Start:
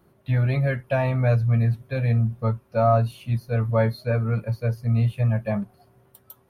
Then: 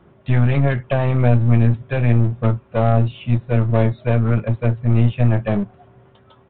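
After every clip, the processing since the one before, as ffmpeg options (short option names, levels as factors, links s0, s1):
-filter_complex "[0:a]acrossover=split=430|3000[s0][s1][s2];[s1]acompressor=threshold=0.0282:ratio=4[s3];[s0][s3][s2]amix=inputs=3:normalize=0,aresample=8000,aeval=exprs='clip(val(0),-1,0.0299)':c=same,aresample=44100,volume=2.82"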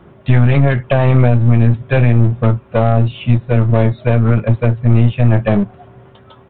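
-af "alimiter=limit=0.355:level=0:latency=1:release=260,volume=2.51"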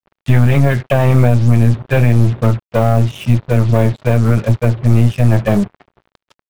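-af "acrusher=bits=4:mix=0:aa=0.5"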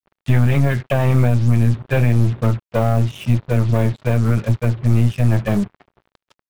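-af "adynamicequalizer=threshold=0.0355:dfrequency=600:dqfactor=1.2:tfrequency=600:tqfactor=1.2:attack=5:release=100:ratio=0.375:range=2.5:mode=cutabove:tftype=bell,volume=0.631"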